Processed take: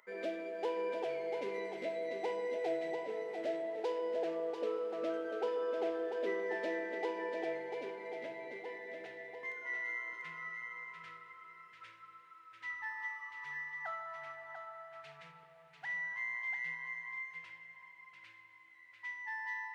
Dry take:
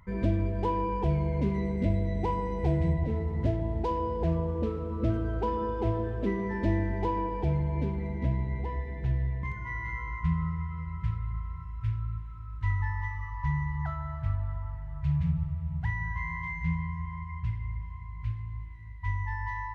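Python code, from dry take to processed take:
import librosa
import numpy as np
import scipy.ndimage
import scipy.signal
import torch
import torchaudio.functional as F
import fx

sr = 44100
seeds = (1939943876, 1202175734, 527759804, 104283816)

y = scipy.signal.sosfilt(scipy.signal.butter(4, 450.0, 'highpass', fs=sr, output='sos'), x)
y = fx.peak_eq(y, sr, hz=1000.0, db=-15.0, octaves=0.25)
y = y + 10.0 ** (-6.0 / 20.0) * np.pad(y, (int(693 * sr / 1000.0), 0))[:len(y)]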